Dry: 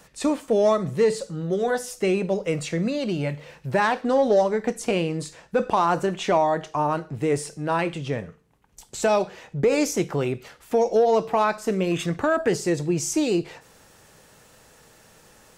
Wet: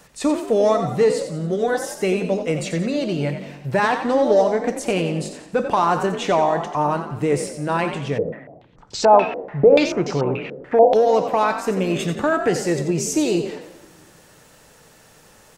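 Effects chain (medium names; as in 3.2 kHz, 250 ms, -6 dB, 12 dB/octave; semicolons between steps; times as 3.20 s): frequency-shifting echo 89 ms, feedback 44%, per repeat +46 Hz, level -9 dB; reverberation RT60 1.6 s, pre-delay 7 ms, DRR 15.5 dB; 8.18–10.95 s: step-sequenced low-pass 6.9 Hz 470–5000 Hz; trim +2 dB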